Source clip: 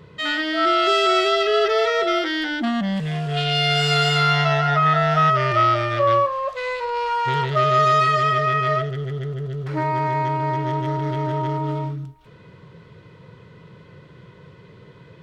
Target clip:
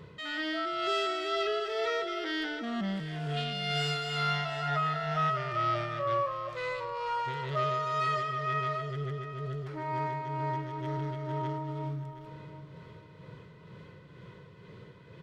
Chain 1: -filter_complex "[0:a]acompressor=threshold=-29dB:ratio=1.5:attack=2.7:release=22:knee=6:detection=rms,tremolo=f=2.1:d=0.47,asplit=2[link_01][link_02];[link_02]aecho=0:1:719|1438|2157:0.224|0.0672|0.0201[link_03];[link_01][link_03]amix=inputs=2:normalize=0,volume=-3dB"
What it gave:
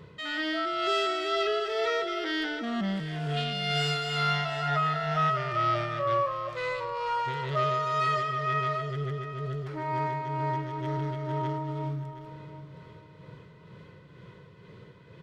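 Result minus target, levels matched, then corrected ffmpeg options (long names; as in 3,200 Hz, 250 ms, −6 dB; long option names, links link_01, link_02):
downward compressor: peak gain reduction −3 dB
-filter_complex "[0:a]acompressor=threshold=-38dB:ratio=1.5:attack=2.7:release=22:knee=6:detection=rms,tremolo=f=2.1:d=0.47,asplit=2[link_01][link_02];[link_02]aecho=0:1:719|1438|2157:0.224|0.0672|0.0201[link_03];[link_01][link_03]amix=inputs=2:normalize=0,volume=-3dB"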